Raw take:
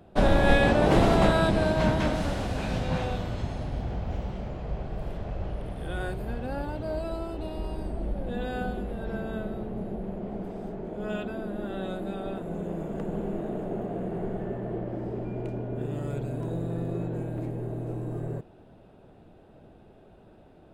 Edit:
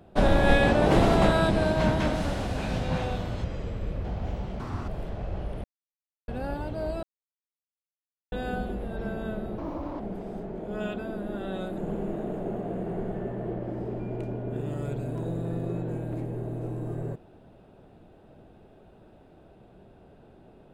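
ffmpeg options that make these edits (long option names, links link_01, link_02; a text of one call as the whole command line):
ffmpeg -i in.wav -filter_complex "[0:a]asplit=12[link_01][link_02][link_03][link_04][link_05][link_06][link_07][link_08][link_09][link_10][link_11][link_12];[link_01]atrim=end=3.444[link_13];[link_02]atrim=start=3.44:end=3.9,asetpts=PTS-STARTPTS,asetrate=33516,aresample=44100,atrim=end_sample=26692,asetpts=PTS-STARTPTS[link_14];[link_03]atrim=start=3.896:end=4.454[link_15];[link_04]atrim=start=4.45:end=4.96,asetpts=PTS-STARTPTS,asetrate=78939,aresample=44100[link_16];[link_05]atrim=start=4.956:end=5.72,asetpts=PTS-STARTPTS,afade=type=out:start_time=0.76:duration=0.004:curve=hsin[link_17];[link_06]atrim=start=5.72:end=6.36,asetpts=PTS-STARTPTS,volume=0[link_18];[link_07]atrim=start=6.36:end=7.11,asetpts=PTS-STARTPTS,afade=type=in:duration=0.004:curve=hsin,afade=type=out:start_time=0.746:duration=0.004:curve=hsin[link_19];[link_08]atrim=start=7.11:end=8.4,asetpts=PTS-STARTPTS,volume=0[link_20];[link_09]atrim=start=8.4:end=9.664,asetpts=PTS-STARTPTS,afade=type=in:duration=0.004:curve=hsin[link_21];[link_10]atrim=start=9.66:end=10.29,asetpts=PTS-STARTPTS,asetrate=66591,aresample=44100,atrim=end_sample=18399,asetpts=PTS-STARTPTS[link_22];[link_11]atrim=start=10.286:end=12.072[link_23];[link_12]atrim=start=13.028[link_24];[link_13][link_14]acrossfade=duration=0.004:curve1=hsin:curve2=hsin[link_25];[link_25][link_15]acrossfade=duration=0.004:curve1=hsin:curve2=hsin[link_26];[link_26][link_16]acrossfade=duration=0.004:curve1=hsin:curve2=hsin[link_27];[link_17][link_18][link_19][link_20][link_21]concat=n=5:v=0:a=1[link_28];[link_27][link_28]acrossfade=duration=0.004:curve1=hsin:curve2=hsin[link_29];[link_29][link_22]acrossfade=duration=0.004:curve1=hsin:curve2=hsin[link_30];[link_30][link_23]acrossfade=duration=0.004:curve1=hsin:curve2=hsin[link_31];[link_31][link_24]acrossfade=duration=0.004:curve1=hsin:curve2=hsin" out.wav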